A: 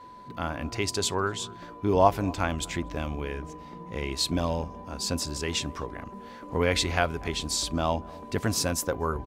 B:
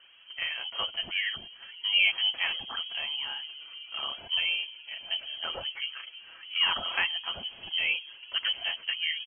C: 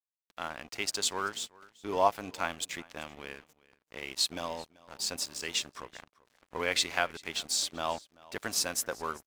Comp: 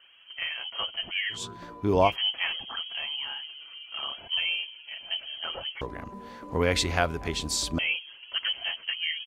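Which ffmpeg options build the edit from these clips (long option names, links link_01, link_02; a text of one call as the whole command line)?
ffmpeg -i take0.wav -i take1.wav -filter_complex "[0:a]asplit=2[link_01][link_02];[1:a]asplit=3[link_03][link_04][link_05];[link_03]atrim=end=1.45[link_06];[link_01]atrim=start=1.29:end=2.17[link_07];[link_04]atrim=start=2.01:end=5.812[link_08];[link_02]atrim=start=5.808:end=7.792[link_09];[link_05]atrim=start=7.788[link_10];[link_06][link_07]acrossfade=duration=0.16:curve1=tri:curve2=tri[link_11];[link_11][link_08]acrossfade=duration=0.16:curve1=tri:curve2=tri[link_12];[link_12][link_09]acrossfade=duration=0.004:curve1=hsin:curve2=hsin[link_13];[link_13][link_10]acrossfade=duration=0.004:curve1=hsin:curve2=hsin" out.wav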